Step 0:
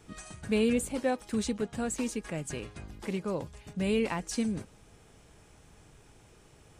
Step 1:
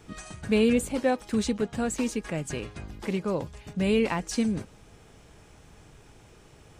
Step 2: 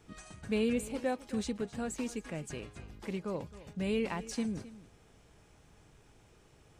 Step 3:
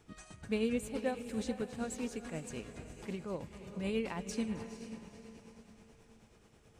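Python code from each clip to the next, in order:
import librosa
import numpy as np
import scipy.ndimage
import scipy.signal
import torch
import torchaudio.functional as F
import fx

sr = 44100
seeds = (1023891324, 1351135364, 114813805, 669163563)

y1 = fx.peak_eq(x, sr, hz=9600.0, db=-4.5, octaves=0.81)
y1 = y1 * librosa.db_to_amplitude(4.5)
y2 = y1 + 10.0 ** (-17.0 / 20.0) * np.pad(y1, (int(264 * sr / 1000.0), 0))[:len(y1)]
y2 = y2 * librosa.db_to_amplitude(-8.5)
y3 = fx.echo_diffused(y2, sr, ms=471, feedback_pct=44, wet_db=-10)
y3 = y3 * (1.0 - 0.43 / 2.0 + 0.43 / 2.0 * np.cos(2.0 * np.pi * 9.3 * (np.arange(len(y3)) / sr)))
y3 = y3 * librosa.db_to_amplitude(-1.0)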